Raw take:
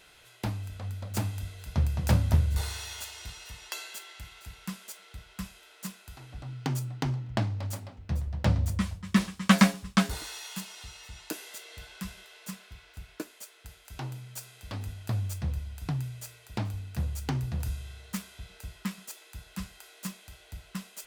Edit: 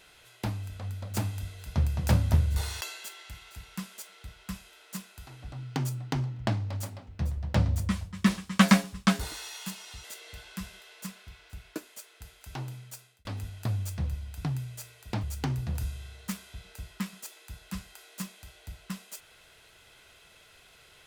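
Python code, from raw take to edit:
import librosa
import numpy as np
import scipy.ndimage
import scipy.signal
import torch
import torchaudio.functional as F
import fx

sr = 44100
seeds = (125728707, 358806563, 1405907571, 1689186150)

y = fx.edit(x, sr, fx.cut(start_s=2.81, length_s=0.9),
    fx.cut(start_s=10.94, length_s=0.54),
    fx.fade_out_span(start_s=14.21, length_s=0.48),
    fx.cut(start_s=16.67, length_s=0.41), tone=tone)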